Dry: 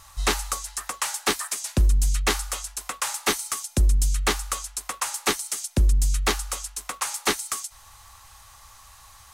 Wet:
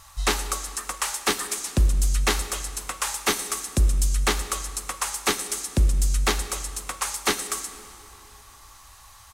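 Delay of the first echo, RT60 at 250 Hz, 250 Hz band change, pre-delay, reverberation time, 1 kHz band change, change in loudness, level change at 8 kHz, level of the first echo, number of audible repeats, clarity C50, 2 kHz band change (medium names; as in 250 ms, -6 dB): 115 ms, 3.1 s, +0.5 dB, 27 ms, 2.6 s, +0.5 dB, 0.0 dB, +0.5 dB, -20.5 dB, 1, 11.0 dB, +0.5 dB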